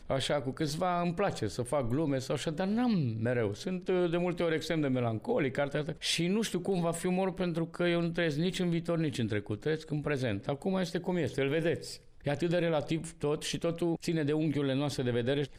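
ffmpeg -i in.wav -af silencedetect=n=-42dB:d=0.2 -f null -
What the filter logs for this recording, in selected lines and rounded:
silence_start: 11.97
silence_end: 12.26 | silence_duration: 0.29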